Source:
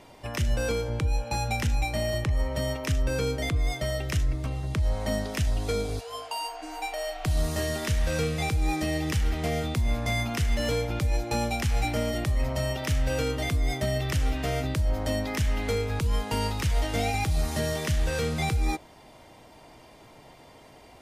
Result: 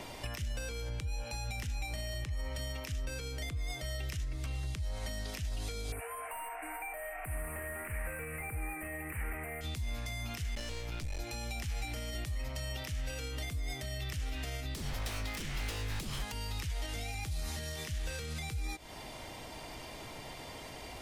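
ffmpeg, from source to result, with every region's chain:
ffmpeg -i in.wav -filter_complex "[0:a]asettb=1/sr,asplit=3[link_01][link_02][link_03];[link_01]atrim=end=5.924[link_04];[link_02]atrim=start=5.92:end=9.61,asetpts=PTS-STARTPTS,afade=type=in:duration=0.004:curve=qsin,afade=type=out:start_time=3.686:duration=0.004:curve=qsin,aemphasis=mode=production:type=75fm,asplit=2[link_05][link_06];[link_06]highpass=frequency=720:poles=1,volume=20dB,asoftclip=type=tanh:threshold=-8dB[link_07];[link_05][link_07]amix=inputs=2:normalize=0,lowpass=frequency=1200:poles=1,volume=-6dB,asuperstop=centerf=4700:order=12:qfactor=0.76[link_08];[link_03]atrim=start=9.606[link_09];[link_04][link_08]acrossfade=duration=0.004:curve1=hsin:curve2=qsin[link_10];[link_10][link_09]acrossfade=duration=0.004:curve1=qsin:curve2=hsin,asettb=1/sr,asplit=3[link_11][link_12][link_13];[link_11]atrim=end=10.554[link_14];[link_12]atrim=start=10.55:end=11.2,asetpts=PTS-STARTPTS,afade=type=in:duration=0.004:curve=qsin,afade=type=out:start_time=0.646:duration=0.004:curve=qsin,acrossover=split=9500[link_15][link_16];[link_16]acompressor=threshold=-59dB:ratio=4:attack=1:release=60[link_17];[link_15][link_17]amix=inputs=2:normalize=0,aeval=exprs='clip(val(0),-1,0.0211)':channel_layout=same[link_18];[link_13]atrim=start=11.196[link_19];[link_14][link_18]acrossfade=duration=0.004:curve1=hsin:curve2=qsin[link_20];[link_20][link_19]acrossfade=duration=0.004:curve1=qsin:curve2=hsin,asettb=1/sr,asplit=3[link_21][link_22][link_23];[link_21]atrim=end=14.744[link_24];[link_22]atrim=start=14.74:end=16.32,asetpts=PTS-STARTPTS,afade=type=in:duration=0.004:curve=qsin,afade=type=out:start_time=1.576:duration=0.004:curve=qsin,equalizer=frequency=360:width=1.6:gain=-7,aeval=exprs='0.0376*(abs(mod(val(0)/0.0376+3,4)-2)-1)':channel_layout=same[link_25];[link_23]atrim=start=16.316[link_26];[link_24][link_25]acrossfade=duration=0.004:curve1=hsin:curve2=qsin[link_27];[link_27][link_26]acrossfade=duration=0.004:curve1=qsin:curve2=hsin,acompressor=threshold=-35dB:ratio=3,alimiter=level_in=8dB:limit=-24dB:level=0:latency=1:release=82,volume=-8dB,acrossover=split=81|1700|6400[link_28][link_29][link_30][link_31];[link_28]acompressor=threshold=-45dB:ratio=4[link_32];[link_29]acompressor=threshold=-56dB:ratio=4[link_33];[link_30]acompressor=threshold=-53dB:ratio=4[link_34];[link_31]acompressor=threshold=-59dB:ratio=4[link_35];[link_32][link_33][link_34][link_35]amix=inputs=4:normalize=0,volume=9dB" out.wav

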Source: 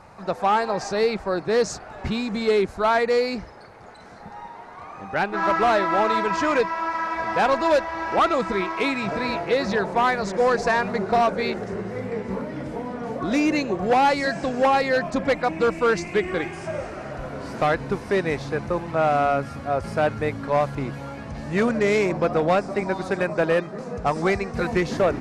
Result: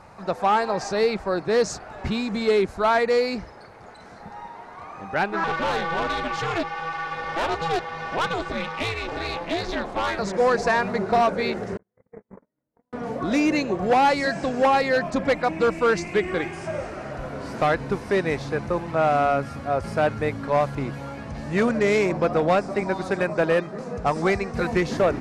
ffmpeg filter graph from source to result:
ffmpeg -i in.wav -filter_complex "[0:a]asettb=1/sr,asplit=3[link_01][link_02][link_03];[link_01]atrim=end=5.444[link_04];[link_02]atrim=start=5.44:end=10.19,asetpts=PTS-STARTPTS,afade=type=in:duration=0.004:curve=qsin,afade=type=out:start_time=4.746:duration=0.004:curve=qsin,equalizer=frequency=3400:width=2.2:gain=8,aeval=exprs='val(0)*sin(2*PI*170*n/s)':channel_layout=same,aeval=exprs='(tanh(7.94*val(0)+0.25)-tanh(0.25))/7.94':channel_layout=same[link_05];[link_03]atrim=start=10.186[link_06];[link_04][link_05]acrossfade=duration=0.004:curve1=hsin:curve2=qsin[link_07];[link_07][link_06]acrossfade=duration=0.004:curve1=qsin:curve2=hsin,asettb=1/sr,asplit=3[link_08][link_09][link_10];[link_08]atrim=end=11.774[link_11];[link_09]atrim=start=11.77:end=12.93,asetpts=PTS-STARTPTS,afade=type=in:duration=0.004:curve=qsin,afade=type=out:start_time=1.156:duration=0.004:curve=qsin,agate=range=-52dB:threshold=-25dB:ratio=16:release=100:detection=peak,asuperstop=centerf=3800:order=8:qfactor=0.89,highshelf=frequency=4800:gain=-11.5[link_12];[link_10]atrim=start=12.926[link_13];[link_11][link_12]acrossfade=duration=0.004:curve1=hsin:curve2=qsin[link_14];[link_14][link_13]acrossfade=duration=0.004:curve1=qsin:curve2=hsin" out.wav

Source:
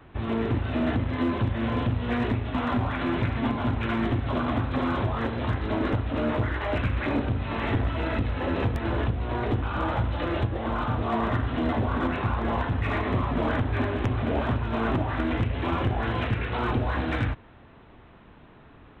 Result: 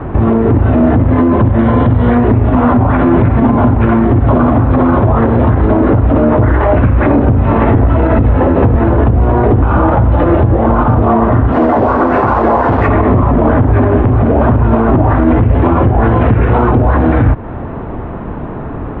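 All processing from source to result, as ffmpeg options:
ffmpeg -i in.wav -filter_complex "[0:a]asettb=1/sr,asplit=3[link_01][link_02][link_03];[link_01]atrim=end=1.594[link_04];[link_02]atrim=start=1.59:end=2.15,asetpts=PTS-STARTPTS,afade=type=in:duration=0.004:curve=qsin,afade=type=out:start_time=0.556:duration=0.004:curve=qsin,highshelf=frequency=2200:gain=10,bandreject=frequency=2600:width=7.6[link_05];[link_03]atrim=start=2.146[link_06];[link_04][link_05]acrossfade=duration=0.004:curve1=hsin:curve2=qsin[link_07];[link_07][link_06]acrossfade=duration=0.004:curve1=qsin:curve2=hsin,asettb=1/sr,asplit=3[link_08][link_09][link_10];[link_08]atrim=end=11.524[link_11];[link_09]atrim=start=11.52:end=12.88,asetpts=PTS-STARTPTS,afade=type=in:duration=0.004:curve=qsin,afade=type=out:start_time=1.356:duration=0.004:curve=qsin,bass=frequency=250:gain=-14,treble=frequency=4000:gain=-14,acrusher=bits=5:mix=0:aa=0.5[link_12];[link_10]atrim=start=12.876[link_13];[link_11][link_12]acrossfade=duration=0.004:curve1=hsin:curve2=qsin[link_14];[link_14][link_13]acrossfade=duration=0.004:curve1=qsin:curve2=hsin,lowpass=1000,acompressor=threshold=-35dB:ratio=2.5,alimiter=level_in=31dB:limit=-1dB:release=50:level=0:latency=1,volume=-1dB" out.wav

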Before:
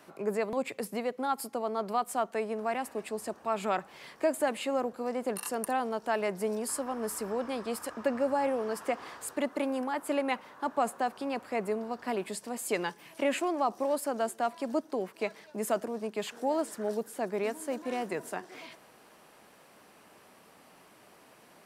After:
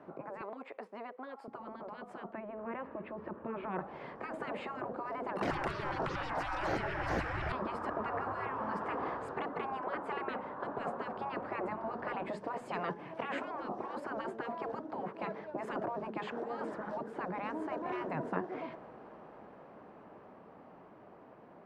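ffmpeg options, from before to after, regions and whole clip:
ffmpeg -i in.wav -filter_complex "[0:a]asettb=1/sr,asplit=3[link_01][link_02][link_03];[link_01]atrim=end=0.414[link_04];[link_02]atrim=start=0.41:end=1.48,asetpts=PTS-STARTPTS,afade=type=in:duration=0.004:curve=qsin,afade=type=out:start_time=1.066:duration=0.004:curve=qsin,highpass=720,highshelf=frequency=9200:gain=-5[link_05];[link_03]atrim=start=1.476[link_06];[link_04][link_05]acrossfade=duration=0.004:curve1=hsin:curve2=qsin[link_07];[link_07][link_06]acrossfade=duration=0.004:curve1=qsin:curve2=hsin,asettb=1/sr,asplit=3[link_08][link_09][link_10];[link_08]atrim=end=2.334[link_11];[link_09]atrim=start=2.33:end=3.79,asetpts=PTS-STARTPTS,afade=type=in:duration=0.004:curve=qsin,afade=type=out:start_time=1.456:duration=0.004:curve=qsin,lowpass=frequency=3200:width=0.5412,lowpass=frequency=3200:width=1.3066,equalizer=frequency=750:width=6.1:gain=-14,acompressor=threshold=-36dB:ratio=2:attack=3.2:release=140:knee=1:detection=peak[link_12];[link_10]atrim=start=3.786[link_13];[link_11][link_12]acrossfade=duration=0.004:curve1=hsin:curve2=qsin[link_14];[link_14][link_13]acrossfade=duration=0.004:curve1=qsin:curve2=hsin,asettb=1/sr,asplit=3[link_15][link_16][link_17];[link_15]atrim=end=5.414[link_18];[link_16]atrim=start=5.41:end=7.52,asetpts=PTS-STARTPTS,afade=type=in:duration=0.004:curve=qsin,afade=type=out:start_time=2.106:duration=0.004:curve=qsin,bandreject=frequency=60:width_type=h:width=6,bandreject=frequency=120:width_type=h:width=6,bandreject=frequency=180:width_type=h:width=6,bandreject=frequency=240:width_type=h:width=6,bandreject=frequency=300:width_type=h:width=6,acontrast=66,aeval=exprs='0.299*sin(PI/2*2*val(0)/0.299)':channel_layout=same[link_19];[link_17]atrim=start=7.516[link_20];[link_18][link_19]acrossfade=duration=0.004:curve1=hsin:curve2=qsin[link_21];[link_21][link_20]acrossfade=duration=0.004:curve1=qsin:curve2=hsin,afftfilt=real='re*lt(hypot(re,im),0.0562)':imag='im*lt(hypot(re,im),0.0562)':win_size=1024:overlap=0.75,lowpass=1000,dynaudnorm=framelen=810:gausssize=9:maxgain=7dB,volume=4.5dB" out.wav

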